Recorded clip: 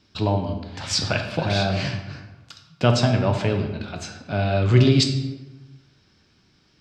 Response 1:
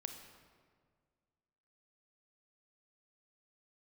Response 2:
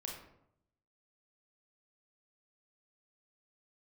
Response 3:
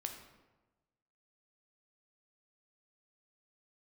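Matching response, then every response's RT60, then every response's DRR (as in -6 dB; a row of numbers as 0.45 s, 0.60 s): 3; 1.8 s, 0.75 s, 1.2 s; 5.5 dB, -1.0 dB, 4.0 dB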